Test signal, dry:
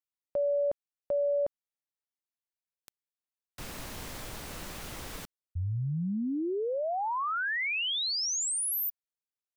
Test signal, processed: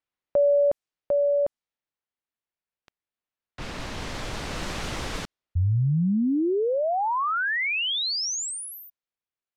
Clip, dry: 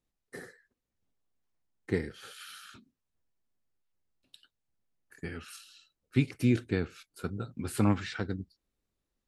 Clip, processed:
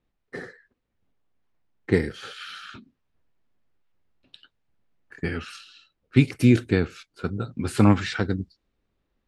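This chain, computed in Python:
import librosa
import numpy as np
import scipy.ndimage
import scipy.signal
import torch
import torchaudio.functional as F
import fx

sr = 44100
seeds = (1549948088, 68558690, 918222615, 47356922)

y = fx.rider(x, sr, range_db=4, speed_s=2.0)
y = fx.env_lowpass(y, sr, base_hz=3000.0, full_db=-26.5)
y = y * librosa.db_to_amplitude(7.0)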